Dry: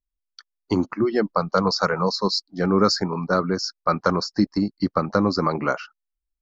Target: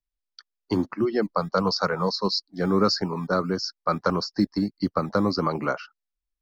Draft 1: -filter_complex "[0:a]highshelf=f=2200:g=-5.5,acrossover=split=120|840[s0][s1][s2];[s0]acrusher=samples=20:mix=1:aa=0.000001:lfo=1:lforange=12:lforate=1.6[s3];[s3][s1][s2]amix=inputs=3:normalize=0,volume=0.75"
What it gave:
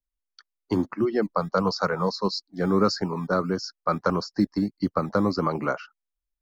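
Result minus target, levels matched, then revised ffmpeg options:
4 kHz band -4.5 dB
-filter_complex "[0:a]lowpass=f=5100:t=q:w=1.8,highshelf=f=2200:g=-5.5,acrossover=split=120|840[s0][s1][s2];[s0]acrusher=samples=20:mix=1:aa=0.000001:lfo=1:lforange=12:lforate=1.6[s3];[s3][s1][s2]amix=inputs=3:normalize=0,volume=0.75"

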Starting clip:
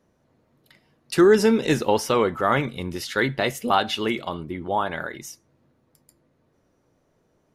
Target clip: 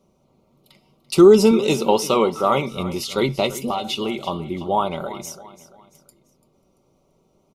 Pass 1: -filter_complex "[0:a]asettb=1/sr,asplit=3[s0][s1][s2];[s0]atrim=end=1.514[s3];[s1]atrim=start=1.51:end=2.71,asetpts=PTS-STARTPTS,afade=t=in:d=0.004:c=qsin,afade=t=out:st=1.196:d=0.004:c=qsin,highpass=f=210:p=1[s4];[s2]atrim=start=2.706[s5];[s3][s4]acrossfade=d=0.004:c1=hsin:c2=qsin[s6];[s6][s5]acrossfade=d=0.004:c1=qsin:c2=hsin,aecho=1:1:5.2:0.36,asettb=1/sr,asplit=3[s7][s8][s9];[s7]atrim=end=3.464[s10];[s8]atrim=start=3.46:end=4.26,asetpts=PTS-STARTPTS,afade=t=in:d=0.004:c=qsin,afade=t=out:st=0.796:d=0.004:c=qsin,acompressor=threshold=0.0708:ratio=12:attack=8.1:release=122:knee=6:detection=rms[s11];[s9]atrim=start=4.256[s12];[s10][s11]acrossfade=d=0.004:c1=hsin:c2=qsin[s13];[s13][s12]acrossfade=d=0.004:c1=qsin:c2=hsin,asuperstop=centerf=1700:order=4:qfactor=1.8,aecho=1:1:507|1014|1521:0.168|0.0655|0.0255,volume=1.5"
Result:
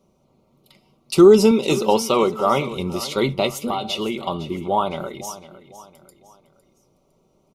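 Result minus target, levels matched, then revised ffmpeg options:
echo 168 ms late
-filter_complex "[0:a]asettb=1/sr,asplit=3[s0][s1][s2];[s0]atrim=end=1.514[s3];[s1]atrim=start=1.51:end=2.71,asetpts=PTS-STARTPTS,afade=t=in:d=0.004:c=qsin,afade=t=out:st=1.196:d=0.004:c=qsin,highpass=f=210:p=1[s4];[s2]atrim=start=2.706[s5];[s3][s4]acrossfade=d=0.004:c1=hsin:c2=qsin[s6];[s6][s5]acrossfade=d=0.004:c1=qsin:c2=hsin,aecho=1:1:5.2:0.36,asettb=1/sr,asplit=3[s7][s8][s9];[s7]atrim=end=3.464[s10];[s8]atrim=start=3.46:end=4.26,asetpts=PTS-STARTPTS,afade=t=in:d=0.004:c=qsin,afade=t=out:st=0.796:d=0.004:c=qsin,acompressor=threshold=0.0708:ratio=12:attack=8.1:release=122:knee=6:detection=rms[s11];[s9]atrim=start=4.256[s12];[s10][s11]acrossfade=d=0.004:c1=hsin:c2=qsin[s13];[s13][s12]acrossfade=d=0.004:c1=qsin:c2=hsin,asuperstop=centerf=1700:order=4:qfactor=1.8,aecho=1:1:339|678|1017:0.168|0.0655|0.0255,volume=1.5"

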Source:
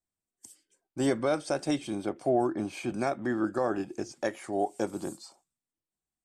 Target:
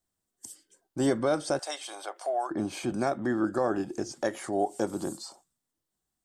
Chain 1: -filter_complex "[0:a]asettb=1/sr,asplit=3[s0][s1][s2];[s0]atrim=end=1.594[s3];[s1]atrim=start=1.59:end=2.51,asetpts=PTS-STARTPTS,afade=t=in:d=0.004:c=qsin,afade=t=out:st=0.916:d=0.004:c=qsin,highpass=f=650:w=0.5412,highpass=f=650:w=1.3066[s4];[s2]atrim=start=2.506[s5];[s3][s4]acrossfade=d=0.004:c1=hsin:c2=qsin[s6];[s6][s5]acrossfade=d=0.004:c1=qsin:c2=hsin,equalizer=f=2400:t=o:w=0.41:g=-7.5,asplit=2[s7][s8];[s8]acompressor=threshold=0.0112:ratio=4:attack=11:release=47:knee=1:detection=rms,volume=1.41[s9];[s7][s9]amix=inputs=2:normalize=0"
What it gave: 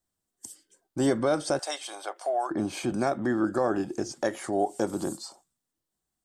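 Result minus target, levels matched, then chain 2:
compression: peak gain reduction -6.5 dB
-filter_complex "[0:a]asettb=1/sr,asplit=3[s0][s1][s2];[s0]atrim=end=1.594[s3];[s1]atrim=start=1.59:end=2.51,asetpts=PTS-STARTPTS,afade=t=in:d=0.004:c=qsin,afade=t=out:st=0.916:d=0.004:c=qsin,highpass=f=650:w=0.5412,highpass=f=650:w=1.3066[s4];[s2]atrim=start=2.506[s5];[s3][s4]acrossfade=d=0.004:c1=hsin:c2=qsin[s6];[s6][s5]acrossfade=d=0.004:c1=qsin:c2=hsin,equalizer=f=2400:t=o:w=0.41:g=-7.5,asplit=2[s7][s8];[s8]acompressor=threshold=0.00398:ratio=4:attack=11:release=47:knee=1:detection=rms,volume=1.41[s9];[s7][s9]amix=inputs=2:normalize=0"

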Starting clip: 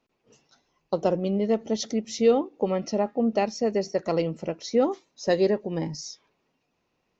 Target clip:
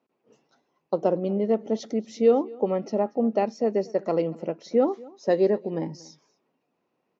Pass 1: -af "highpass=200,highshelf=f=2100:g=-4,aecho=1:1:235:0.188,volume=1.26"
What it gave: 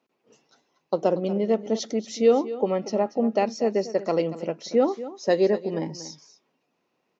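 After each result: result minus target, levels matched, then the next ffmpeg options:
4 kHz band +7.5 dB; echo-to-direct +8 dB
-af "highpass=200,highshelf=f=2100:g=-14,aecho=1:1:235:0.188,volume=1.26"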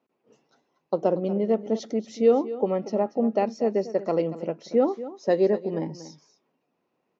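echo-to-direct +8 dB
-af "highpass=200,highshelf=f=2100:g=-14,aecho=1:1:235:0.075,volume=1.26"

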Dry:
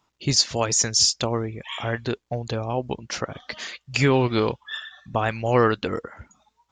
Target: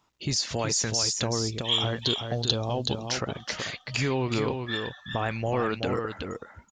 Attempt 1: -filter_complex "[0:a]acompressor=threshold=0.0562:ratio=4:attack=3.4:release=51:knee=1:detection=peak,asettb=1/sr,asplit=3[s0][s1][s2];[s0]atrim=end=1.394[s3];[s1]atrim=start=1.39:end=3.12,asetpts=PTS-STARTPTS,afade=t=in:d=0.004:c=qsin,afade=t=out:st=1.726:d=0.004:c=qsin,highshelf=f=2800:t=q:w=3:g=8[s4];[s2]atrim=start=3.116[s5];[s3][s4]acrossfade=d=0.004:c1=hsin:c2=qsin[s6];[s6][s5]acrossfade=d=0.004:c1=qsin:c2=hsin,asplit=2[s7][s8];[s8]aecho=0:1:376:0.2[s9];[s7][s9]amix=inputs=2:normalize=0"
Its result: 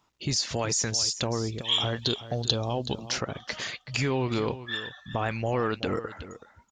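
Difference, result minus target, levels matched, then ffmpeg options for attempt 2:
echo-to-direct -8 dB
-filter_complex "[0:a]acompressor=threshold=0.0562:ratio=4:attack=3.4:release=51:knee=1:detection=peak,asettb=1/sr,asplit=3[s0][s1][s2];[s0]atrim=end=1.394[s3];[s1]atrim=start=1.39:end=3.12,asetpts=PTS-STARTPTS,afade=t=in:d=0.004:c=qsin,afade=t=out:st=1.726:d=0.004:c=qsin,highshelf=f=2800:t=q:w=3:g=8[s4];[s2]atrim=start=3.116[s5];[s3][s4]acrossfade=d=0.004:c1=hsin:c2=qsin[s6];[s6][s5]acrossfade=d=0.004:c1=qsin:c2=hsin,asplit=2[s7][s8];[s8]aecho=0:1:376:0.501[s9];[s7][s9]amix=inputs=2:normalize=0"

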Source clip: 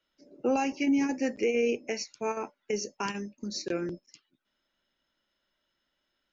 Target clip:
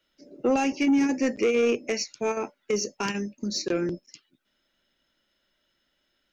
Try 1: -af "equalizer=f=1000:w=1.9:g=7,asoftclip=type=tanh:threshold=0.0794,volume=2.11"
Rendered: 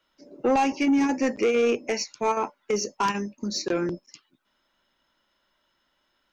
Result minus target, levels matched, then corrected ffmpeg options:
1 kHz band +6.0 dB
-af "equalizer=f=1000:w=1.9:g=-5,asoftclip=type=tanh:threshold=0.0794,volume=2.11"

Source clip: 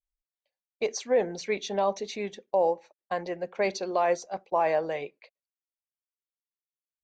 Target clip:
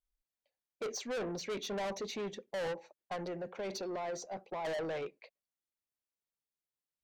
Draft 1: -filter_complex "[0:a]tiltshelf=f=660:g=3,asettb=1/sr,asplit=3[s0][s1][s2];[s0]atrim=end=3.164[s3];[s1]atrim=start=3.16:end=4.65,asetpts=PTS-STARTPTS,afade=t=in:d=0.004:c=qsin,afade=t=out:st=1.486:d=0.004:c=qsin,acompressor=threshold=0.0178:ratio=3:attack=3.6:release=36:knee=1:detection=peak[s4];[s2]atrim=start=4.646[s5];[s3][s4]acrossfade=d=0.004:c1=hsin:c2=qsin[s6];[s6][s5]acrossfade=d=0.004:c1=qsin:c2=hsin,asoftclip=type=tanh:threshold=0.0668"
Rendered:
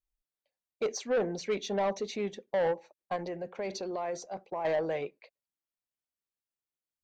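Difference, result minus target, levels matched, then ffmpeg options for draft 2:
saturation: distortion -7 dB
-filter_complex "[0:a]tiltshelf=f=660:g=3,asettb=1/sr,asplit=3[s0][s1][s2];[s0]atrim=end=3.164[s3];[s1]atrim=start=3.16:end=4.65,asetpts=PTS-STARTPTS,afade=t=in:d=0.004:c=qsin,afade=t=out:st=1.486:d=0.004:c=qsin,acompressor=threshold=0.0178:ratio=3:attack=3.6:release=36:knee=1:detection=peak[s4];[s2]atrim=start=4.646[s5];[s3][s4]acrossfade=d=0.004:c1=hsin:c2=qsin[s6];[s6][s5]acrossfade=d=0.004:c1=qsin:c2=hsin,asoftclip=type=tanh:threshold=0.0188"

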